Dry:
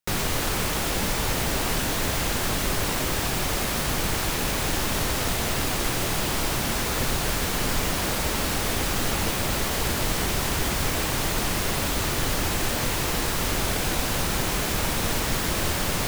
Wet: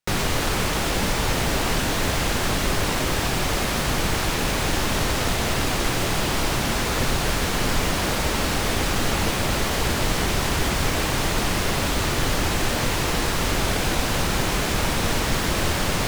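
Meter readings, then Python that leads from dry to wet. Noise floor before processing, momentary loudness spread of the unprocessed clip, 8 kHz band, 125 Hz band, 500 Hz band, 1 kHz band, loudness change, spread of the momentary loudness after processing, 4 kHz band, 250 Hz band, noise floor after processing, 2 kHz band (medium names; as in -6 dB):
-27 dBFS, 0 LU, 0.0 dB, +3.5 dB, +3.5 dB, +3.5 dB, +2.0 dB, 0 LU, +2.5 dB, +3.5 dB, -24 dBFS, +3.0 dB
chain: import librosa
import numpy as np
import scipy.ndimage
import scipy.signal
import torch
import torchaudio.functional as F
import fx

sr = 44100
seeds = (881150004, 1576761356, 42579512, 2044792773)

y = fx.high_shelf(x, sr, hz=10000.0, db=-10.0)
y = F.gain(torch.from_numpy(y), 3.5).numpy()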